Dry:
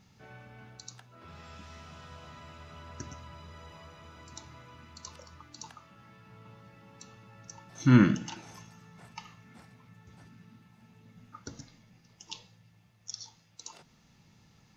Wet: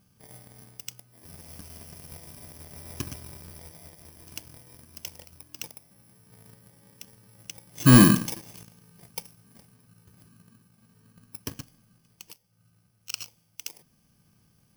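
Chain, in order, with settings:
samples in bit-reversed order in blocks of 32 samples
leveller curve on the samples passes 2
0:12.27–0:13.10: downward compressor 6 to 1, threshold −48 dBFS, peak gain reduction 18.5 dB
level +1.5 dB

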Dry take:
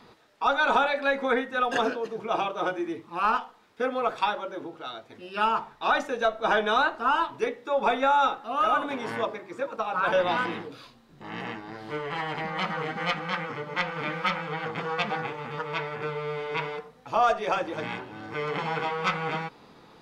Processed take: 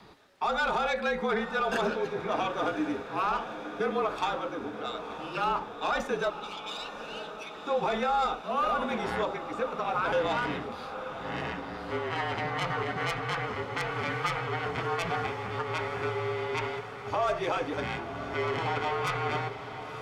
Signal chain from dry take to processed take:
stylus tracing distortion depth 0.065 ms
brickwall limiter −20 dBFS, peak gain reduction 8 dB
frequency shifter −40 Hz
0:06.30–0:07.55: Chebyshev high-pass filter 2,400 Hz, order 5
feedback delay with all-pass diffusion 1,014 ms, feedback 64%, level −11 dB

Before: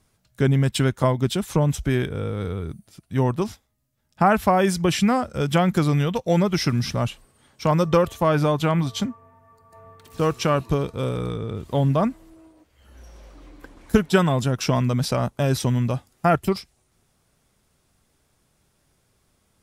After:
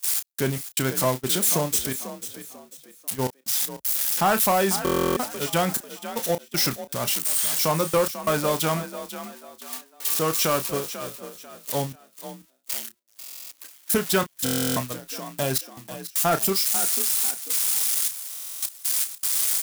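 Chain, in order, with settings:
spike at every zero crossing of −14 dBFS
high-pass filter 330 Hz 6 dB per octave
noise gate −23 dBFS, range −31 dB
gate pattern "x.x.xxxxxx.xxx.." 78 BPM −60 dB
double-tracking delay 31 ms −12 dB
soft clipping −13 dBFS, distortion −18 dB
on a send: echo with shifted repeats 493 ms, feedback 33%, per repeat +43 Hz, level −12 dB
on the sum: buffer that repeats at 0:04.84/0:13.19/0:14.44/0:18.30, samples 1,024, times 13

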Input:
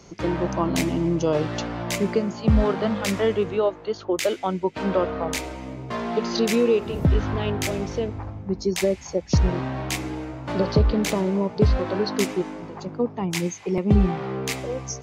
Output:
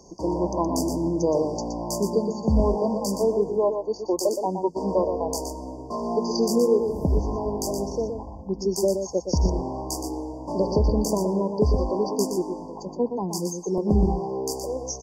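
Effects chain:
linear-phase brick-wall band-stop 1,100–4,500 Hz
parametric band 120 Hz −12.5 dB 0.76 octaves
single-tap delay 120 ms −7 dB

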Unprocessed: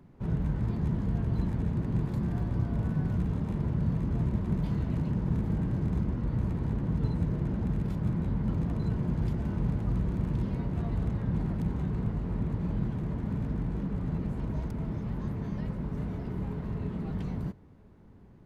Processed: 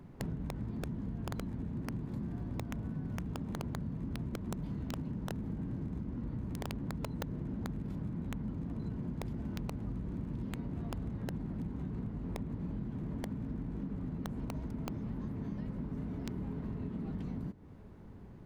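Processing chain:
dynamic equaliser 260 Hz, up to +8 dB, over −49 dBFS, Q 2.2
downward compressor 8 to 1, threshold −39 dBFS, peak gain reduction 18 dB
wrap-around overflow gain 32 dB
level +3 dB

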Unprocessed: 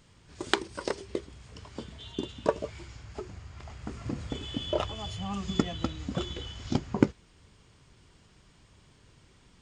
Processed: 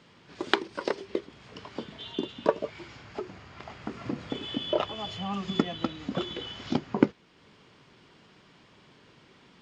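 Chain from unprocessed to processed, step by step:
three-way crossover with the lows and the highs turned down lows −22 dB, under 150 Hz, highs −23 dB, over 5,100 Hz
in parallel at −2.5 dB: downward compressor, threshold −42 dBFS, peak gain reduction 24.5 dB
on the sum: level +1.5 dB

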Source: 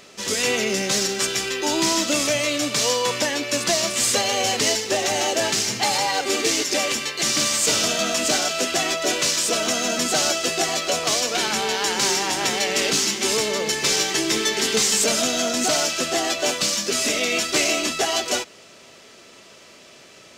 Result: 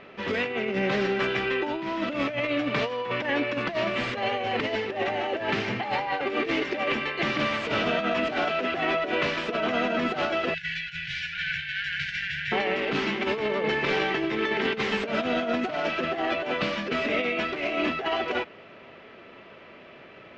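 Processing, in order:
low-pass filter 2,600 Hz 24 dB per octave
compressor whose output falls as the input rises −26 dBFS, ratio −0.5
0:10.54–0:12.52: linear-phase brick-wall band-stop 170–1,400 Hz

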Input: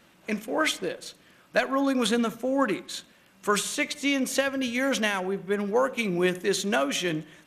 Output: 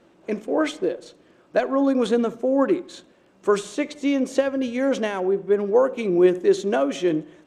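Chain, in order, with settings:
drawn EQ curve 210 Hz 0 dB, 350 Hz +10 dB, 2,000 Hz −6 dB, 7,900 Hz −7 dB, 12,000 Hz −19 dB

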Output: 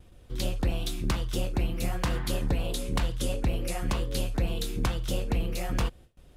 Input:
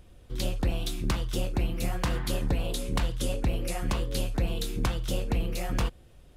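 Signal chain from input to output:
noise gate with hold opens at −45 dBFS

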